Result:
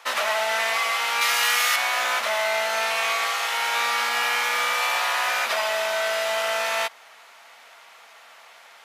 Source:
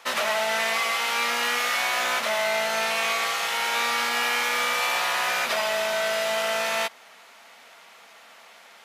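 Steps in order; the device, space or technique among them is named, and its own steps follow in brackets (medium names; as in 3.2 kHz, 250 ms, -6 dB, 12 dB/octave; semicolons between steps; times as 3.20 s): 1.21–1.76 s: tilt EQ +2.5 dB/octave; filter by subtraction (in parallel: low-pass 890 Hz 12 dB/octave + polarity flip)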